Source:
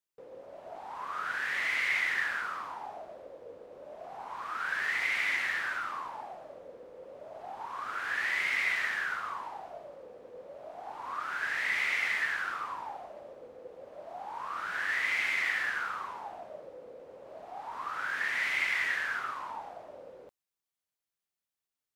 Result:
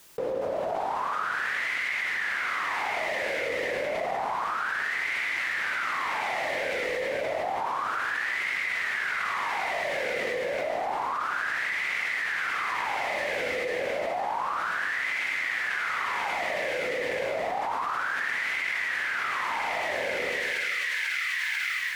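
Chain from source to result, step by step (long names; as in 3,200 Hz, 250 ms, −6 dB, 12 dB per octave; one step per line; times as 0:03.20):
echo with a time of its own for lows and highs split 2,000 Hz, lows 108 ms, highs 492 ms, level −5.5 dB
envelope flattener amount 100%
level −3 dB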